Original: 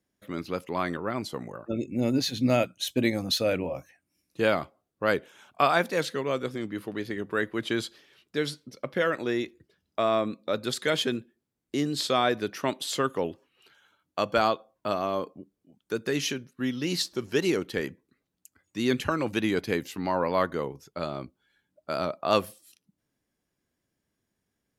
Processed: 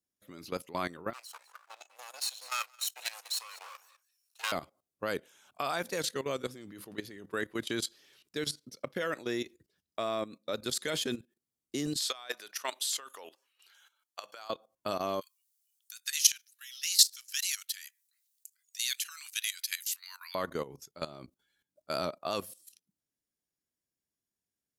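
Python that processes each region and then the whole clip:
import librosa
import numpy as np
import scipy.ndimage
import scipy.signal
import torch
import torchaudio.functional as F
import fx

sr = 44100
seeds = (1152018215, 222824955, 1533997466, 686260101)

y = fx.chain(x, sr, fx.lower_of_two(delay_ms=0.72),
    fx.bessel_highpass(hz=1100.0, order=6),
    fx.echo_single(ms=198, db=-17.0), at=(1.13, 4.52))
y = fx.chain(y, sr, fx.highpass(hz=850.0, slope=12),
    fx.over_compress(threshold_db=-31.0, ratio=-0.5), at=(11.97, 14.5))
y = fx.chain(y, sr, fx.bessel_highpass(hz=2300.0, order=8),
    fx.tilt_eq(slope=3.0), at=(15.21, 20.35))
y = fx.bass_treble(y, sr, bass_db=-1, treble_db=11)
y = fx.level_steps(y, sr, step_db=15)
y = F.gain(torch.from_numpy(y), -2.5).numpy()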